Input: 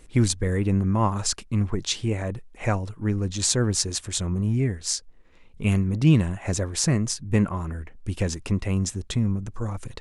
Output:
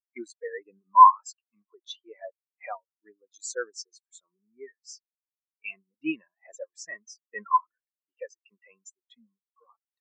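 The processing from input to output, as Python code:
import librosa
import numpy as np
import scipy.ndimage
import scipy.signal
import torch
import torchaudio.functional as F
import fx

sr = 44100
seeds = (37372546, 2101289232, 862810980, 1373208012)

p1 = scipy.signal.sosfilt(scipy.signal.butter(2, 850.0, 'highpass', fs=sr, output='sos'), x)
p2 = fx.over_compress(p1, sr, threshold_db=-34.0, ratio=-1.0)
p3 = p1 + (p2 * librosa.db_to_amplitude(0.0))
y = fx.spectral_expand(p3, sr, expansion=4.0)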